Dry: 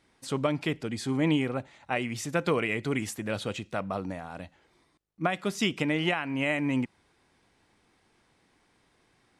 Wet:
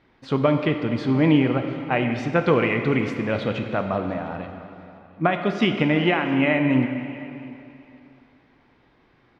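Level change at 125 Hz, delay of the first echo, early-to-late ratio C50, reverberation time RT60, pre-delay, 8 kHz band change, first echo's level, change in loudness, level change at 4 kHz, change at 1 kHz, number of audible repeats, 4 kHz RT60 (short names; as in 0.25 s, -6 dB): +9.0 dB, 0.702 s, 6.5 dB, 2.9 s, 8 ms, under -10 dB, -21.5 dB, +8.0 dB, +3.0 dB, +8.0 dB, 1, 2.6 s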